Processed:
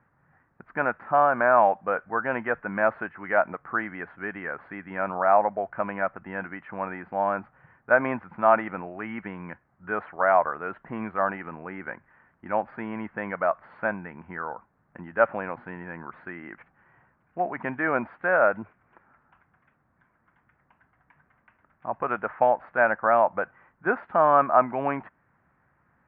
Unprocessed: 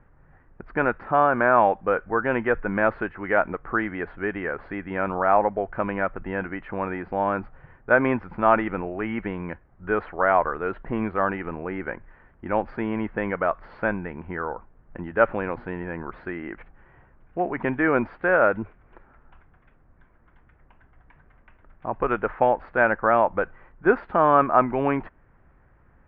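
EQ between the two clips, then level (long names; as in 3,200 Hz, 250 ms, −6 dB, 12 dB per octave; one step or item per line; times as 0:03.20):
parametric band 410 Hz −10 dB 1.6 octaves
dynamic equaliser 640 Hz, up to +7 dB, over −40 dBFS, Q 2.1
band-pass filter 170–2,200 Hz
0.0 dB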